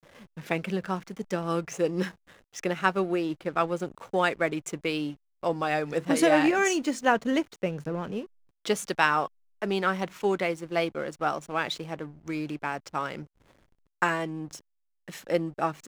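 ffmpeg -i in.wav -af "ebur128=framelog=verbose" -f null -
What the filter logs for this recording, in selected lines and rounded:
Integrated loudness:
  I:         -28.5 LUFS
  Threshold: -39.0 LUFS
Loudness range:
  LRA:         7.0 LU
  Threshold: -48.6 LUFS
  LRA low:   -33.0 LUFS
  LRA high:  -25.9 LUFS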